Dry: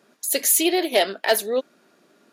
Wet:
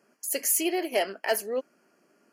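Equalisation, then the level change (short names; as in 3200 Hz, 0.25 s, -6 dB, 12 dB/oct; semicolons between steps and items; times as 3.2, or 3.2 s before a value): Butterworth band-stop 3700 Hz, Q 2.7; low shelf 63 Hz -8.5 dB; -6.5 dB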